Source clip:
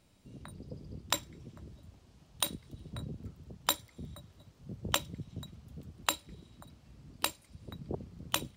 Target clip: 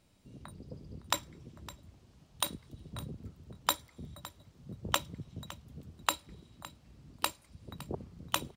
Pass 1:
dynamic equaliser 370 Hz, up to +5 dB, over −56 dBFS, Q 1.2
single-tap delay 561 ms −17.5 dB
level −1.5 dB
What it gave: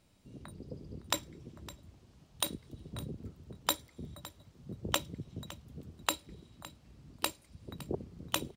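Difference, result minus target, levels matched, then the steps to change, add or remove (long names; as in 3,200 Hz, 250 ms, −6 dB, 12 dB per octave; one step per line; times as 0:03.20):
500 Hz band +3.0 dB
change: dynamic equaliser 1,100 Hz, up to +5 dB, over −56 dBFS, Q 1.2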